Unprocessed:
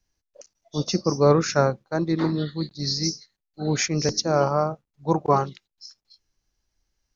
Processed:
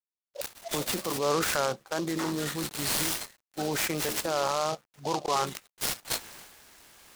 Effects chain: recorder AGC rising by 47 dB/s; high-pass 1.2 kHz 6 dB/octave; treble shelf 4.6 kHz -7.5 dB; in parallel at -2 dB: peak limiter -21.5 dBFS, peak gain reduction 9 dB; on the sum: transient shaper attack -3 dB, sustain +8 dB; bit crusher 10-bit; delay time shaken by noise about 4.2 kHz, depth 0.058 ms; trim -4 dB

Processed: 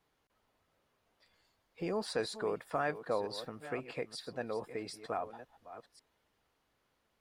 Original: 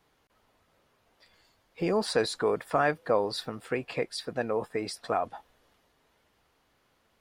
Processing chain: chunks repeated in reverse 545 ms, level -13 dB; trim -8.5 dB

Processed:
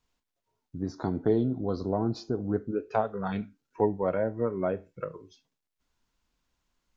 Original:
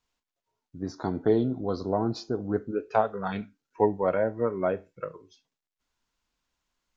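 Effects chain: bass shelf 400 Hz +6.5 dB; in parallel at +2 dB: compression, threshold -33 dBFS, peak gain reduction 18 dB; on the sum: trim -7 dB

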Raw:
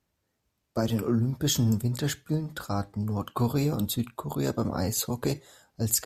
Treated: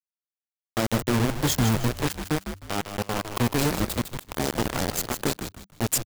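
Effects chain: hum 50 Hz, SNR 23 dB; bit crusher 4-bit; frequency-shifting echo 155 ms, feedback 31%, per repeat -100 Hz, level -8 dB

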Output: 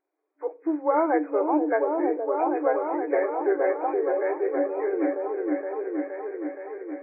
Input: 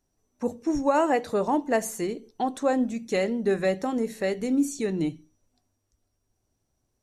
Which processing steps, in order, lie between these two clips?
knee-point frequency compression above 1.3 kHz 1.5:1; FFT band-pass 290–2500 Hz; delay with an opening low-pass 470 ms, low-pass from 400 Hz, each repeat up 1 oct, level 0 dB

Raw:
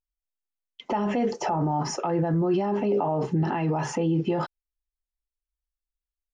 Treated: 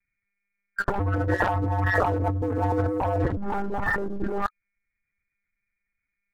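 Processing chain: knee-point frequency compression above 1.2 kHz 4:1; monotone LPC vocoder at 8 kHz 200 Hz; waveshaping leveller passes 2; 0.99–3.37 s: ring modulator 93 Hz; compressor with a negative ratio -28 dBFS, ratio -1; trim +3 dB

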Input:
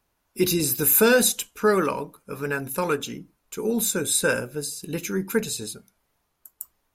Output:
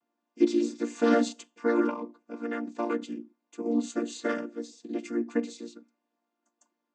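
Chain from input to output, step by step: vocoder on a held chord major triad, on A#3; trim -3.5 dB

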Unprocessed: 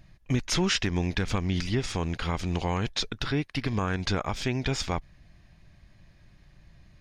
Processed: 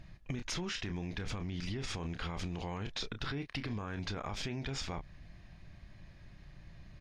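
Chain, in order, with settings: treble shelf 8.6 kHz -11 dB; doubling 29 ms -12 dB; peak limiter -25.5 dBFS, peak gain reduction 11 dB; compression, threshold -36 dBFS, peak gain reduction 6.5 dB; trim +1.5 dB

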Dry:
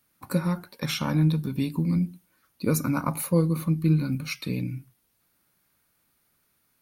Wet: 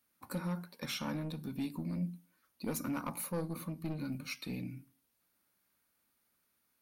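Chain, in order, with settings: bass shelf 130 Hz -7.5 dB; saturation -23 dBFS, distortion -12 dB; on a send: reverberation RT60 0.45 s, pre-delay 3 ms, DRR 17.5 dB; on the sum: trim -7.5 dB

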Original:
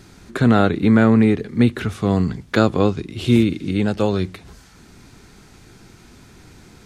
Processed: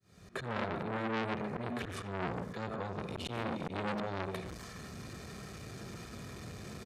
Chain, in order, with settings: fade-in on the opening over 0.86 s; high-pass 67 Hz 12 dB/octave; bass shelf 150 Hz -11.5 dB; compression 6:1, threshold -30 dBFS, peak gain reduction 17.5 dB; slow attack 114 ms; bass shelf 370 Hz +10.5 dB; comb 1.7 ms, depth 64%; band-passed feedback delay 83 ms, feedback 83%, band-pass 1.5 kHz, level -10.5 dB; on a send at -7.5 dB: reverberation RT60 0.45 s, pre-delay 100 ms; on the sum: transformer saturation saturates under 1.8 kHz; trim -1 dB

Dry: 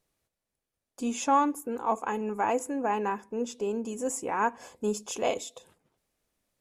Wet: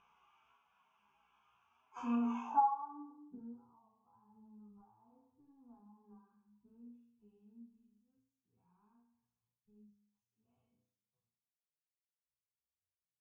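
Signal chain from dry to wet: band-pass sweep 1 kHz -> 5.1 kHz, 2.99–3.96 s; gate -60 dBFS, range -41 dB; time stretch by phase-locked vocoder 2×; graphic EQ with 31 bands 200 Hz +4 dB, 315 Hz -12 dB, 6.3 kHz +12 dB; upward compressor, threshold -36 dBFS; static phaser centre 2.8 kHz, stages 8; flutter echo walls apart 5.8 m, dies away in 0.65 s; compression 10:1, threshold -35 dBFS, peak gain reduction 16.5 dB; low-pass sweep 2.8 kHz -> 110 Hz, 1.80–3.65 s; chorus voices 4, 1 Hz, delay 15 ms, depth 3 ms; trim +7.5 dB

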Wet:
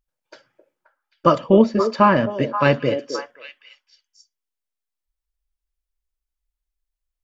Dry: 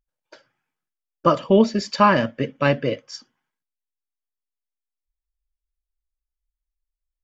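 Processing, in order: 1.38–2.36 s: treble shelf 3 kHz -12 dB; on a send: repeats whose band climbs or falls 264 ms, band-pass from 420 Hz, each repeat 1.4 oct, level -5.5 dB; on the sum: trim +2 dB

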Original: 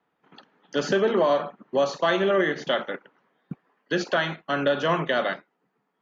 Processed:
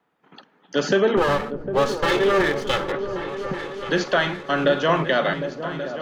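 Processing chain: 1.17–2.92 s: comb filter that takes the minimum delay 2.3 ms; on a send: delay with an opening low-pass 377 ms, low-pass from 200 Hz, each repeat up 2 oct, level -6 dB; on the sum: trim +3.5 dB

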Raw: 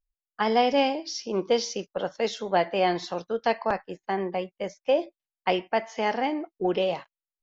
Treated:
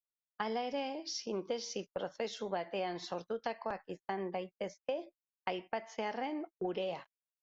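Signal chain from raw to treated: gate -40 dBFS, range -30 dB; compression, threshold -28 dBFS, peak gain reduction 11.5 dB; trim -5.5 dB

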